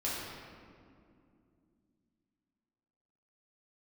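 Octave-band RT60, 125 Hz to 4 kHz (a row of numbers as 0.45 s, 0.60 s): 3.5 s, 3.8 s, 2.8 s, 2.1 s, 1.7 s, 1.2 s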